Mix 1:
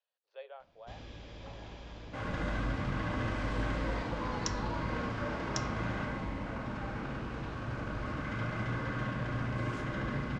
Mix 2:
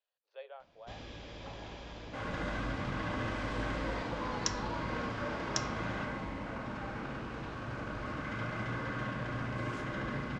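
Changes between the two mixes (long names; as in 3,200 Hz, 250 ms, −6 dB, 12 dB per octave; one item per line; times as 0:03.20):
first sound +3.5 dB
master: add low-shelf EQ 160 Hz −6 dB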